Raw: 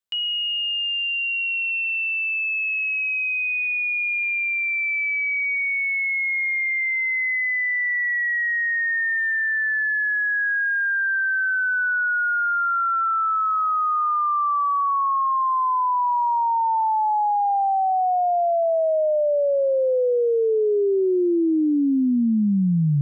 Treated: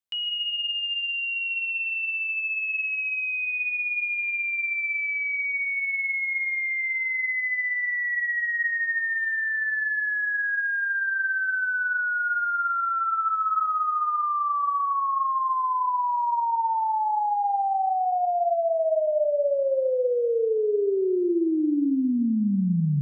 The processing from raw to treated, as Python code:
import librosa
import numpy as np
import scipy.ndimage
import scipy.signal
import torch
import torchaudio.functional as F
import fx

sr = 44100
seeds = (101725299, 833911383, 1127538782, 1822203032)

y = fx.rev_freeverb(x, sr, rt60_s=0.86, hf_ratio=0.35, predelay_ms=90, drr_db=10.5)
y = F.gain(torch.from_numpy(y), -4.0).numpy()